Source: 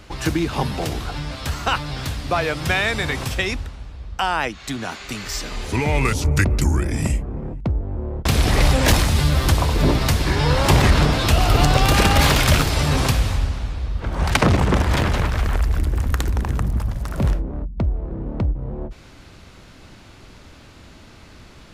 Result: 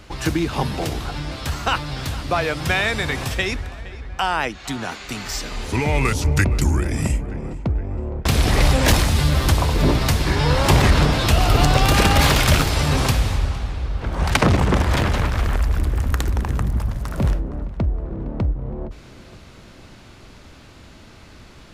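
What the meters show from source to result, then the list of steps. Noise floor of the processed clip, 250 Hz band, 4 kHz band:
-44 dBFS, 0.0 dB, 0.0 dB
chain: tape echo 0.464 s, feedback 68%, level -17 dB, low-pass 3200 Hz

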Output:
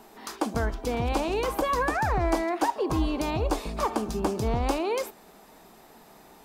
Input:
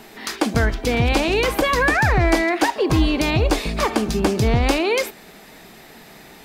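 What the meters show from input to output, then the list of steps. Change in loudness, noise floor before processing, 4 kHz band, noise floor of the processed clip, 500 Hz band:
-8.5 dB, -44 dBFS, -13.0 dB, -53 dBFS, -7.5 dB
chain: graphic EQ 125/1000/2000/4000 Hz -5/+6/-8/-4 dB; gain -8 dB

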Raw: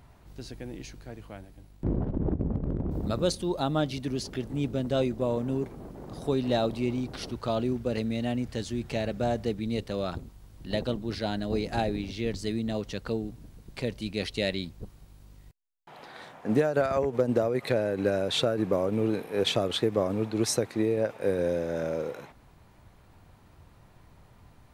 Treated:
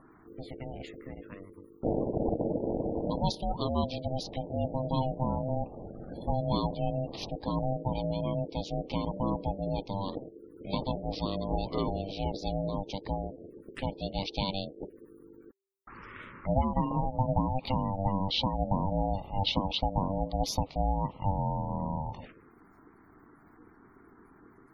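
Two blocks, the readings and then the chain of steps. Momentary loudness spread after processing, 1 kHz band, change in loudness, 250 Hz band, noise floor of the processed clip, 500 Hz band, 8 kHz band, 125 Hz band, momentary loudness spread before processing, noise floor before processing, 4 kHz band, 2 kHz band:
15 LU, +4.0 dB, -3.0 dB, -3.5 dB, -58 dBFS, -6.0 dB, -9.5 dB, +0.5 dB, 15 LU, -56 dBFS, -2.0 dB, -10.0 dB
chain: ring modulator 390 Hz; in parallel at -1 dB: compressor 6:1, threshold -45 dBFS, peak gain reduction 22 dB; on the sum: envelope phaser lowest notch 420 Hz, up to 1600 Hz, full sweep at -33 dBFS; spectral gate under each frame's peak -25 dB strong; gain +1 dB

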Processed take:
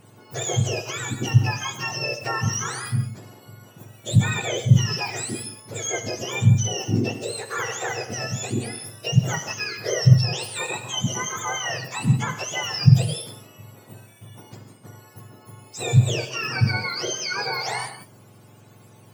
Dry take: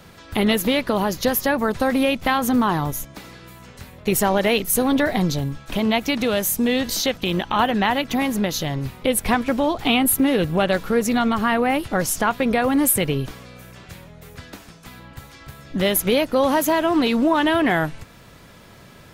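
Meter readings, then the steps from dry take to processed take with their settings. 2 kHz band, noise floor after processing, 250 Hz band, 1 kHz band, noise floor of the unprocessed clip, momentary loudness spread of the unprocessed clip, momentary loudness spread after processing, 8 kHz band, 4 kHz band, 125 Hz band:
-4.0 dB, -50 dBFS, -9.5 dB, -9.0 dB, -46 dBFS, 7 LU, 12 LU, -2.0 dB, -2.0 dB, +10.0 dB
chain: spectrum mirrored in octaves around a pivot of 1200 Hz; non-linear reverb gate 0.21 s flat, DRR 7.5 dB; gain -5.5 dB

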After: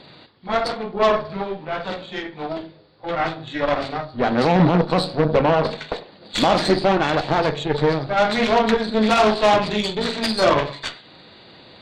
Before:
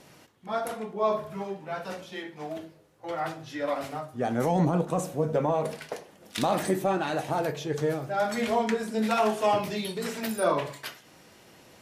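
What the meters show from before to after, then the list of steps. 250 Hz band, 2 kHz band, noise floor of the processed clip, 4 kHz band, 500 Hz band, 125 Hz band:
+8.5 dB, +11.0 dB, -47 dBFS, +14.0 dB, +8.5 dB, +8.0 dB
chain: nonlinear frequency compression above 3300 Hz 4:1; added harmonics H 5 -20 dB, 7 -24 dB, 8 -17 dB, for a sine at -12 dBFS; gain +7 dB

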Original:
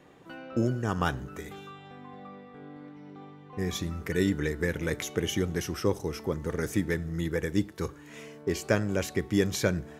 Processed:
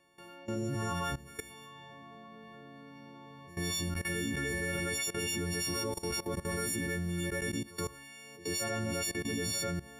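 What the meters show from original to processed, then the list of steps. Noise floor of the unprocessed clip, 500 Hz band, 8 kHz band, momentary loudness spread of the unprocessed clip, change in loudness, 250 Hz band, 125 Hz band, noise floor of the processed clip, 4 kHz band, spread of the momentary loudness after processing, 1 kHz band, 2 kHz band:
-50 dBFS, -8.0 dB, +3.0 dB, 19 LU, -4.0 dB, -7.0 dB, -6.0 dB, -52 dBFS, +1.5 dB, 18 LU, -3.0 dB, -1.5 dB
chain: frequency quantiser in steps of 4 st; reverse echo 92 ms -9.5 dB; level quantiser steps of 17 dB

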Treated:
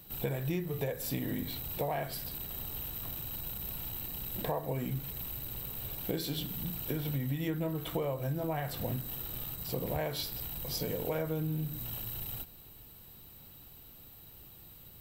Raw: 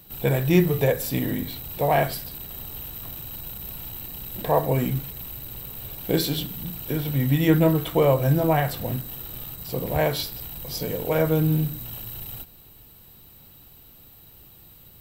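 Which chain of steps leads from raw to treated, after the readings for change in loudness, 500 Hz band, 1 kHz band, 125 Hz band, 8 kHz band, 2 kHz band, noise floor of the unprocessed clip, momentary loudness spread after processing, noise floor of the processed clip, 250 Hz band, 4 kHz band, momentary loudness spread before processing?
-11.0 dB, -13.0 dB, -13.0 dB, -12.0 dB, -7.0 dB, -12.5 dB, -50 dBFS, 17 LU, -53 dBFS, -12.5 dB, -8.0 dB, 14 LU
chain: compressor 10:1, threshold -27 dBFS, peak gain reduction 15 dB; gain -3.5 dB

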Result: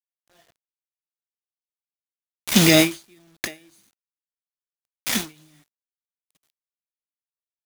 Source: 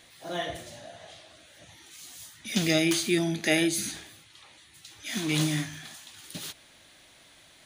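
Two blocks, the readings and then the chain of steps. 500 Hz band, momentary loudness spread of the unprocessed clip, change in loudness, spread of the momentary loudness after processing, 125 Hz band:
+4.0 dB, 20 LU, +8.5 dB, 20 LU, +3.5 dB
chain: bit-crush 5-bit; maximiser +12.5 dB; ending taper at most 190 dB/s; gain -1 dB

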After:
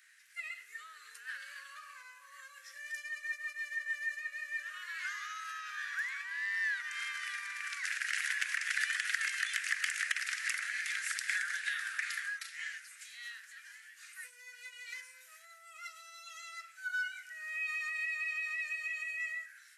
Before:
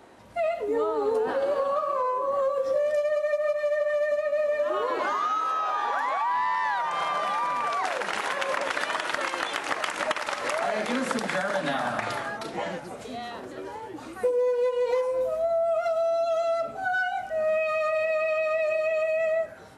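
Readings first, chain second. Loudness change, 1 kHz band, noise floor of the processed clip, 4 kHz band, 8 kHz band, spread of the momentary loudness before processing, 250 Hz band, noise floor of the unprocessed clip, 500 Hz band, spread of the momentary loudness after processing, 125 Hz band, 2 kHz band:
-9.5 dB, -23.0 dB, -58 dBFS, -5.5 dB, +0.5 dB, 6 LU, under -40 dB, -40 dBFS, under -40 dB, 17 LU, under -40 dB, -2.5 dB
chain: elliptic high-pass 1700 Hz, stop band 50 dB; bell 3500 Hz -9.5 dB 0.99 oct; gain +2.5 dB

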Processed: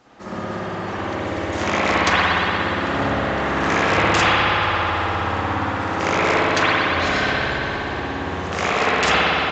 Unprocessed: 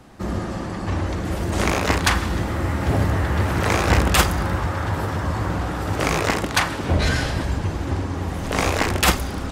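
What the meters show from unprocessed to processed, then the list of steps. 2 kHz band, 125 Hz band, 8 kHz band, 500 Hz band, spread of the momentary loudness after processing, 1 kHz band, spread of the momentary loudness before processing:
+6.0 dB, -6.5 dB, -6.0 dB, +3.5 dB, 10 LU, +5.5 dB, 8 LU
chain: HPF 500 Hz 6 dB/oct; wow and flutter 29 cents; spring tank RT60 3.5 s, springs 58 ms, chirp 65 ms, DRR -9.5 dB; downsampling 16000 Hz; gain -3.5 dB

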